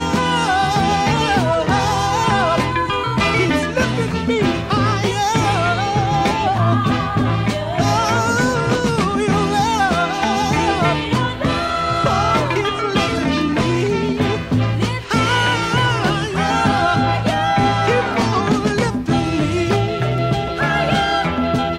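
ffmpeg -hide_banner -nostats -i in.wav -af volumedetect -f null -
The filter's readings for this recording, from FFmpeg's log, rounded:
mean_volume: -17.1 dB
max_volume: -3.7 dB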